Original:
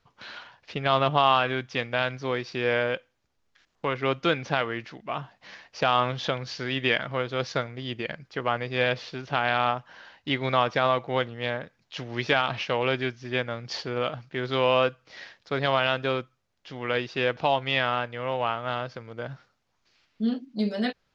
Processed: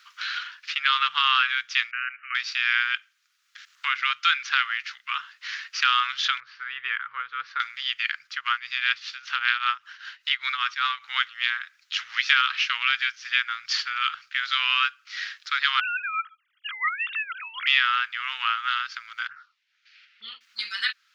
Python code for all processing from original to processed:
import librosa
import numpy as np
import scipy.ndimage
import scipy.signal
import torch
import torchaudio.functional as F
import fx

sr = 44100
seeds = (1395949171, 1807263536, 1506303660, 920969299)

y = fx.chain(x, sr, fx.brickwall_bandpass(low_hz=1100.0, high_hz=3000.0),
    fx.level_steps(step_db=13), at=(1.91, 2.35))
y = fx.chain(y, sr, fx.lowpass(hz=1000.0, slope=12),
    fx.peak_eq(hz=420.0, db=8.0, octaves=0.58),
    fx.notch(hz=750.0, q=6.4), at=(6.4, 7.6))
y = fx.chain(y, sr, fx.low_shelf(hz=400.0, db=5.5),
    fx.tremolo_shape(shape='triangle', hz=5.1, depth_pct=85), at=(8.27, 11.04))
y = fx.chain(y, sr, fx.sine_speech(),
    fx.over_compress(threshold_db=-33.0, ratio=-1.0), at=(15.8, 17.67))
y = fx.chain(y, sr, fx.lowpass(hz=2300.0, slope=12),
    fx.env_phaser(low_hz=170.0, high_hz=1600.0, full_db=-31.5), at=(19.27, 20.41))
y = scipy.signal.sosfilt(scipy.signal.ellip(4, 1.0, 50, 1300.0, 'highpass', fs=sr, output='sos'), y)
y = fx.band_squash(y, sr, depth_pct=40)
y = F.gain(torch.from_numpy(y), 8.5).numpy()